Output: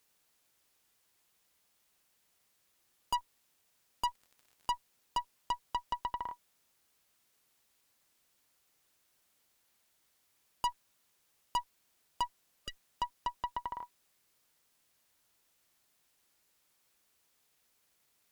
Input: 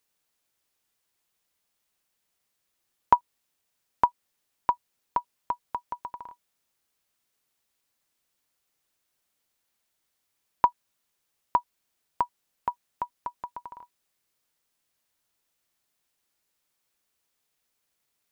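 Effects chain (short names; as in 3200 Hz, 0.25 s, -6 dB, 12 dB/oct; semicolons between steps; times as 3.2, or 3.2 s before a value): tube stage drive 33 dB, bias 0.35; 4.07–4.72 crackle 58/s -53 dBFS; 12.3–12.78 spectral repair 600–1200 Hz after; gain +5.5 dB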